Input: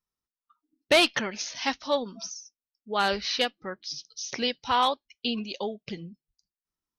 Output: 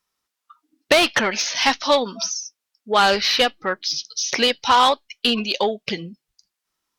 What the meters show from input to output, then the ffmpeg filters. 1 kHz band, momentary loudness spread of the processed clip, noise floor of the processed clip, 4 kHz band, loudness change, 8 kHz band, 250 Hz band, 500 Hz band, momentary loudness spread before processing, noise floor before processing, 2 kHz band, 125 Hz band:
+9.0 dB, 10 LU, −83 dBFS, +9.0 dB, +8.5 dB, +10.5 dB, +6.0 dB, +7.5 dB, 16 LU, below −85 dBFS, +8.5 dB, can't be measured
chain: -filter_complex "[0:a]asplit=2[link_01][link_02];[link_02]highpass=frequency=720:poles=1,volume=13dB,asoftclip=type=tanh:threshold=-12.5dB[link_03];[link_01][link_03]amix=inputs=2:normalize=0,lowpass=frequency=7900:poles=1,volume=-6dB,acrossover=split=1200|3200[link_04][link_05][link_06];[link_04]acompressor=threshold=-22dB:ratio=4[link_07];[link_05]acompressor=threshold=-29dB:ratio=4[link_08];[link_06]acompressor=threshold=-31dB:ratio=4[link_09];[link_07][link_08][link_09]amix=inputs=3:normalize=0,volume=8dB" -ar 48000 -c:a libopus -b:a 256k

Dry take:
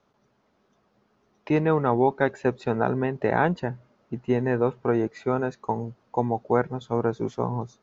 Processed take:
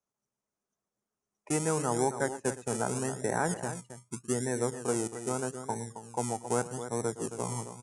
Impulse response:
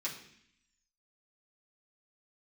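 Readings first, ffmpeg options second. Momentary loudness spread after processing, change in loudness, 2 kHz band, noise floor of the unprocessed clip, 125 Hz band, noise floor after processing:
8 LU, −7.0 dB, −7.5 dB, −68 dBFS, −7.5 dB, below −85 dBFS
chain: -filter_complex "[0:a]afftdn=noise_reduction=16:noise_floor=-35,aecho=1:1:115|269:0.15|0.299,acrossover=split=280[link_01][link_02];[link_01]acrusher=samples=32:mix=1:aa=0.000001:lfo=1:lforange=19.2:lforate=0.82[link_03];[link_03][link_02]amix=inputs=2:normalize=0,aresample=22050,aresample=44100,aexciter=amount=10.3:drive=6.6:freq=6100,volume=-8dB"

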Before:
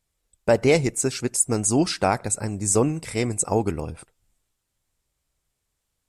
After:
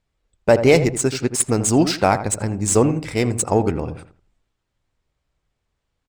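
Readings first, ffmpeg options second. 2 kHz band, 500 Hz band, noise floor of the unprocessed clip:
+4.5 dB, +5.0 dB, −79 dBFS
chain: -filter_complex "[0:a]adynamicsmooth=sensitivity=5.5:basefreq=4100,asplit=2[link_01][link_02];[link_02]adelay=82,lowpass=frequency=1300:poles=1,volume=-10dB,asplit=2[link_03][link_04];[link_04]adelay=82,lowpass=frequency=1300:poles=1,volume=0.3,asplit=2[link_05][link_06];[link_06]adelay=82,lowpass=frequency=1300:poles=1,volume=0.3[link_07];[link_01][link_03][link_05][link_07]amix=inputs=4:normalize=0,volume=4.5dB"

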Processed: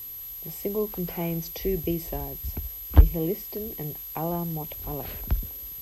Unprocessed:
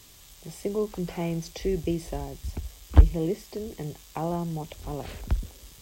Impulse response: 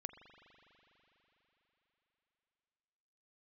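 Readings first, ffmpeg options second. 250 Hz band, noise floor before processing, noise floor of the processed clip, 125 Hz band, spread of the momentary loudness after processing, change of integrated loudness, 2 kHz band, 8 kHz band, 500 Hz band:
0.0 dB, −52 dBFS, −39 dBFS, 0.0 dB, 12 LU, +0.5 dB, 0.0 dB, 0.0 dB, 0.0 dB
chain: -af "aeval=exprs='val(0)+0.0158*sin(2*PI*12000*n/s)':channel_layout=same"

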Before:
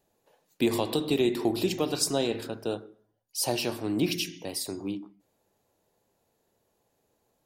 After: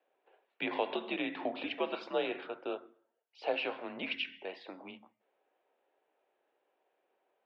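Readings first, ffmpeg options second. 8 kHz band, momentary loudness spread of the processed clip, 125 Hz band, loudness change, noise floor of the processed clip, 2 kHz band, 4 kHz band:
below −40 dB, 13 LU, below −20 dB, −8.0 dB, −81 dBFS, 0.0 dB, −9.0 dB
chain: -af "highpass=frequency=540:width_type=q:width=0.5412,highpass=frequency=540:width_type=q:width=1.307,lowpass=frequency=3100:width_type=q:width=0.5176,lowpass=frequency=3100:width_type=q:width=0.7071,lowpass=frequency=3100:width_type=q:width=1.932,afreqshift=-86"

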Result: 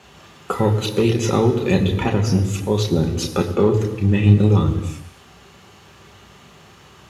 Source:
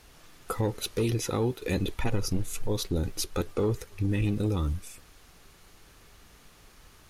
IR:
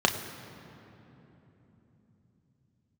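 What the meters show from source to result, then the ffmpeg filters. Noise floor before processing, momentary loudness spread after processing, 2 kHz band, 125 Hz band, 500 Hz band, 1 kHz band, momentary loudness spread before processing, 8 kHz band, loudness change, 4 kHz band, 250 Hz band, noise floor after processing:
−56 dBFS, 8 LU, +10.0 dB, +12.5 dB, +11.5 dB, +12.0 dB, 5 LU, +4.5 dB, +12.0 dB, +8.0 dB, +12.5 dB, −47 dBFS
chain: -filter_complex "[1:a]atrim=start_sample=2205,afade=type=out:start_time=0.38:duration=0.01,atrim=end_sample=17199[link_01];[0:a][link_01]afir=irnorm=-1:irlink=0,volume=-3dB"

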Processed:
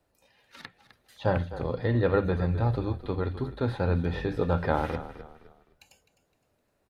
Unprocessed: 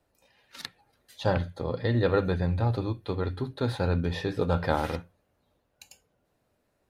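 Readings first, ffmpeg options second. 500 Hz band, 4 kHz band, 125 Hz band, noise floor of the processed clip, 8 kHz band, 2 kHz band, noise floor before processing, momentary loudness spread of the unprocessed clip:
0.0 dB, −6.0 dB, 0.0 dB, −74 dBFS, can't be measured, −0.5 dB, −74 dBFS, 11 LU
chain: -filter_complex "[0:a]acrossover=split=3000[link_01][link_02];[link_02]acompressor=threshold=-55dB:ratio=4:attack=1:release=60[link_03];[link_01][link_03]amix=inputs=2:normalize=0,asplit=4[link_04][link_05][link_06][link_07];[link_05]adelay=257,afreqshift=-35,volume=-13.5dB[link_08];[link_06]adelay=514,afreqshift=-70,volume=-22.9dB[link_09];[link_07]adelay=771,afreqshift=-105,volume=-32.2dB[link_10];[link_04][link_08][link_09][link_10]amix=inputs=4:normalize=0"

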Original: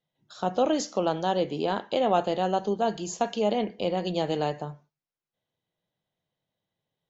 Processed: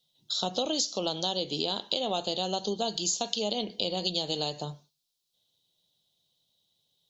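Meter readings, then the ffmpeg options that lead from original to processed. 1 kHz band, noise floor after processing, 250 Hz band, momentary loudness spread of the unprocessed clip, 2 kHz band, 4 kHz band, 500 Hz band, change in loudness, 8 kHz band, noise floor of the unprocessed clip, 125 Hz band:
−7.5 dB, −80 dBFS, −6.0 dB, 6 LU, −6.5 dB, +9.0 dB, −6.5 dB, −2.5 dB, can't be measured, below −85 dBFS, −5.0 dB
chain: -af "highshelf=frequency=2700:width_type=q:width=3:gain=12.5,acompressor=threshold=-26dB:ratio=6"

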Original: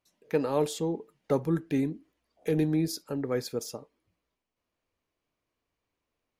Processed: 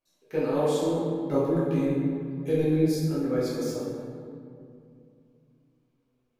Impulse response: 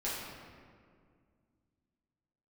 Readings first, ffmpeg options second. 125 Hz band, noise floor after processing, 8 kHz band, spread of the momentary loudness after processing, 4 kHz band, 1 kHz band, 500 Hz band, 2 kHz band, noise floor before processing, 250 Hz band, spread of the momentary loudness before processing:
+4.5 dB, −73 dBFS, −1.5 dB, 13 LU, 0.0 dB, +2.5 dB, +4.5 dB, +0.5 dB, below −85 dBFS, +4.0 dB, 11 LU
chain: -filter_complex "[0:a]bandreject=frequency=1900:width=12,flanger=delay=1.8:depth=5.5:regen=79:speed=0.37:shape=sinusoidal[link_01];[1:a]atrim=start_sample=2205,asetrate=33957,aresample=44100[link_02];[link_01][link_02]afir=irnorm=-1:irlink=0"

